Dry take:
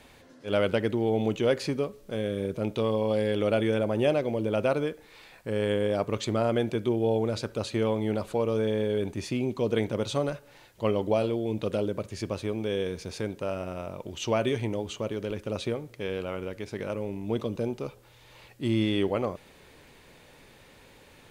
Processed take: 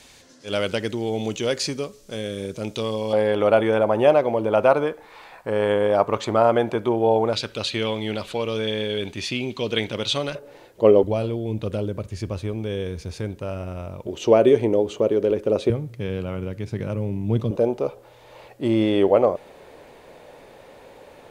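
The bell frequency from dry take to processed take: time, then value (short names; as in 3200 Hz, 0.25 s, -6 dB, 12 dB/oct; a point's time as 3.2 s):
bell +14.5 dB 1.8 oct
6300 Hz
from 3.13 s 910 Hz
from 7.33 s 3300 Hz
from 10.35 s 440 Hz
from 11.03 s 61 Hz
from 14.07 s 440 Hz
from 15.7 s 120 Hz
from 17.51 s 610 Hz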